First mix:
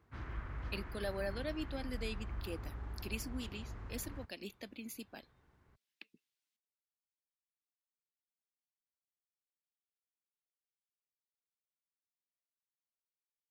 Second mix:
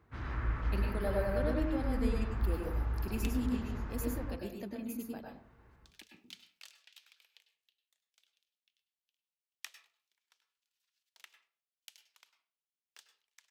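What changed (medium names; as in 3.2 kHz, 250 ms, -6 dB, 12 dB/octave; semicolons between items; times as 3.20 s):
speech: remove frequency weighting D; second sound: unmuted; reverb: on, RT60 0.45 s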